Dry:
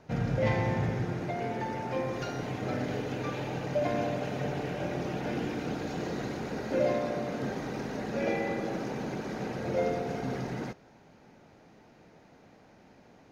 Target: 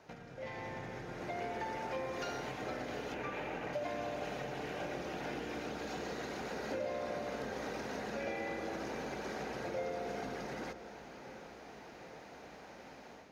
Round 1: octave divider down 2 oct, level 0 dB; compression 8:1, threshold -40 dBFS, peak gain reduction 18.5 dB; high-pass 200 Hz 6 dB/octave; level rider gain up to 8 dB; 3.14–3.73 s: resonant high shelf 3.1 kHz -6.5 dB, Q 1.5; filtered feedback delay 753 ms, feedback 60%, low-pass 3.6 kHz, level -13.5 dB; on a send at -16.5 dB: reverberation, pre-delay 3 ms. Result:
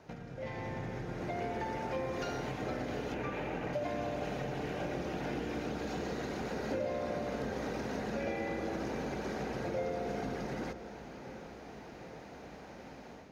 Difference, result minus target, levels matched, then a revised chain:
250 Hz band +2.5 dB
octave divider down 2 oct, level 0 dB; compression 8:1, threshold -40 dBFS, peak gain reduction 18.5 dB; high-pass 570 Hz 6 dB/octave; level rider gain up to 8 dB; 3.14–3.73 s: resonant high shelf 3.1 kHz -6.5 dB, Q 1.5; filtered feedback delay 753 ms, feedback 60%, low-pass 3.6 kHz, level -13.5 dB; on a send at -16.5 dB: reverberation, pre-delay 3 ms

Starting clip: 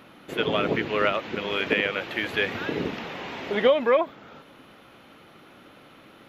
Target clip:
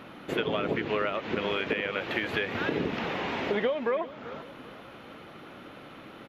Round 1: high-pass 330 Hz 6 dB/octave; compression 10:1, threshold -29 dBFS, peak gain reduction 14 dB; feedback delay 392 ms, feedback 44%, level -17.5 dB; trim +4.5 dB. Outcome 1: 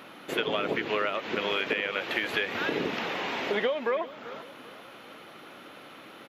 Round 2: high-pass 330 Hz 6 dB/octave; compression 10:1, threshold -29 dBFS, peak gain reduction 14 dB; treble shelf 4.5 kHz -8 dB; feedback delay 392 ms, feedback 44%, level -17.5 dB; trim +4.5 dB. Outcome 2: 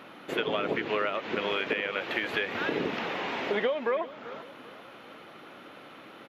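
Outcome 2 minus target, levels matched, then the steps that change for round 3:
250 Hz band -2.5 dB
remove: high-pass 330 Hz 6 dB/octave

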